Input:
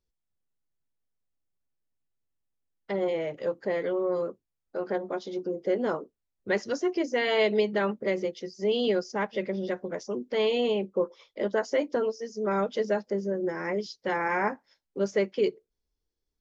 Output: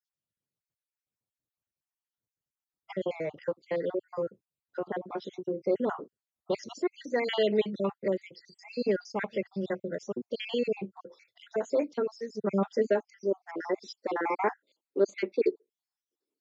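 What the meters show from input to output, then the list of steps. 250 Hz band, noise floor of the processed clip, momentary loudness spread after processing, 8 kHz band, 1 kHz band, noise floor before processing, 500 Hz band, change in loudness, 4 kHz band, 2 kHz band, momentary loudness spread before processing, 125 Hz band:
-2.5 dB, under -85 dBFS, 11 LU, no reading, -3.0 dB, -84 dBFS, -3.0 dB, -3.0 dB, -5.0 dB, -6.0 dB, 8 LU, -2.0 dB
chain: random holes in the spectrogram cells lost 57%; peaking EQ 110 Hz -3.5 dB 1 oct; high-pass sweep 110 Hz -> 320 Hz, 12.24–13.01 s; trim -1 dB

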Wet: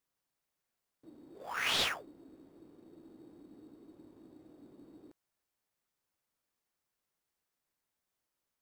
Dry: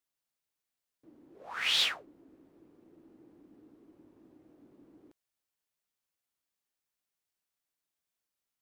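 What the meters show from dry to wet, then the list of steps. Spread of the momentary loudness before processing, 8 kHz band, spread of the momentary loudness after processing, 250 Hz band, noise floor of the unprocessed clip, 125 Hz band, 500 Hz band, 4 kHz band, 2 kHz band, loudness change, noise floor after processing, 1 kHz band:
17 LU, -0.5 dB, 15 LU, +4.0 dB, under -85 dBFS, +7.5 dB, +5.5 dB, -5.0 dB, -1.0 dB, -3.5 dB, under -85 dBFS, +3.5 dB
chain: dynamic bell 3.8 kHz, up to -5 dB, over -40 dBFS, Q 1.2; in parallel at -7.5 dB: sample-rate reducer 4.1 kHz, jitter 0%

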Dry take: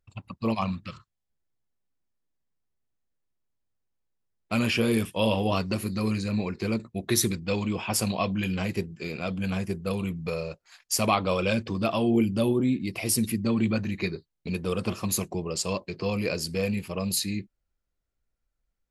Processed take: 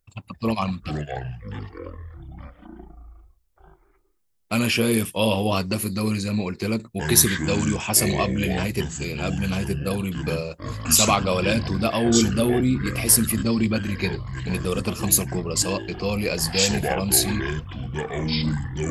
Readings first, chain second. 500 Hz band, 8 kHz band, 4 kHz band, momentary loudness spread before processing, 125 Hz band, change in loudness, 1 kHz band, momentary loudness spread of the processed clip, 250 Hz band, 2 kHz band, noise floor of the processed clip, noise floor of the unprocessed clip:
+3.5 dB, +10.5 dB, +7.5 dB, 8 LU, +5.5 dB, +5.5 dB, +4.5 dB, 14 LU, +3.5 dB, +6.0 dB, -61 dBFS, -81 dBFS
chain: treble shelf 7.2 kHz +11.5 dB; ever faster or slower copies 231 ms, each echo -7 st, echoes 3, each echo -6 dB; trim +3 dB

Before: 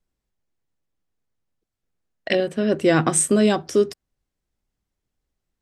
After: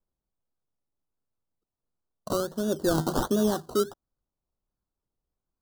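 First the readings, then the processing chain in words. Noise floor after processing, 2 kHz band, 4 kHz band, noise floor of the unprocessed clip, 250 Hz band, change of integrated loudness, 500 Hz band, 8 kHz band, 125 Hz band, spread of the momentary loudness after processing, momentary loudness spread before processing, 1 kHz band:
under -85 dBFS, -13.5 dB, -7.0 dB, -83 dBFS, -7.0 dB, -7.5 dB, -7.5 dB, -14.0 dB, -6.5 dB, 6 LU, 6 LU, -5.5 dB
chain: decimation with a swept rate 20×, swing 60% 1.4 Hz; Butterworth band-stop 2.3 kHz, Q 1.1; trim -7 dB

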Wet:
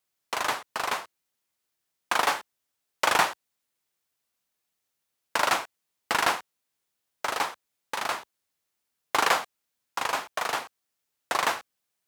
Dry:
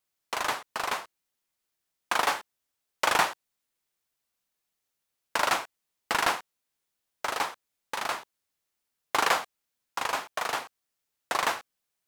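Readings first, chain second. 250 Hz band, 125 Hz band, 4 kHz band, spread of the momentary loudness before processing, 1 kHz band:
+1.5 dB, +1.5 dB, +1.5 dB, 12 LU, +1.5 dB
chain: high-pass 57 Hz; trim +1.5 dB

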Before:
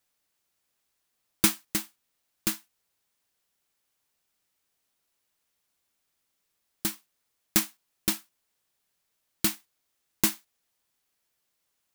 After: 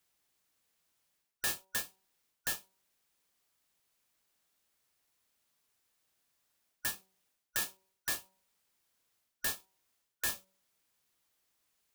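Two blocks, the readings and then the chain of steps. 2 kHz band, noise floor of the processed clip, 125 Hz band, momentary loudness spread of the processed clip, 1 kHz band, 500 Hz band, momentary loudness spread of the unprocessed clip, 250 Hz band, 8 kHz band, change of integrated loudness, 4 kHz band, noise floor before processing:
-2.0 dB, -84 dBFS, -15.5 dB, 7 LU, -7.0 dB, -10.0 dB, 16 LU, -23.0 dB, -8.5 dB, -8.5 dB, -8.0 dB, -78 dBFS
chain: four frequency bands reordered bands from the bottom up 4123; reverse; compression 6:1, threshold -32 dBFS, peak gain reduction 16 dB; reverse; de-hum 190 Hz, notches 5

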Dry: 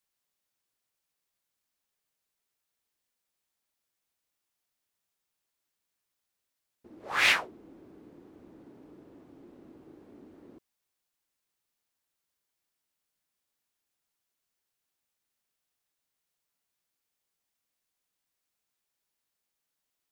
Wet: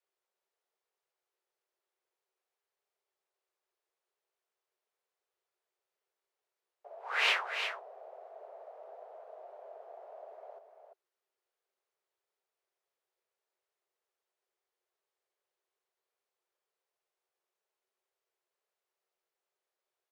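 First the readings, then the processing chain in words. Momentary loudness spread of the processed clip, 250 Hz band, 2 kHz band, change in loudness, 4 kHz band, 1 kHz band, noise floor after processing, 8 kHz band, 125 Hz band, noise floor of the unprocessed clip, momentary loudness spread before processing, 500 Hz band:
22 LU, under -20 dB, -4.5 dB, -6.0 dB, -3.0 dB, -2.0 dB, under -85 dBFS, -9.5 dB, under -35 dB, -85 dBFS, 8 LU, +2.0 dB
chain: on a send: delay 345 ms -7.5 dB; on the sum: frequency shift +350 Hz; tilt EQ -4 dB/octave

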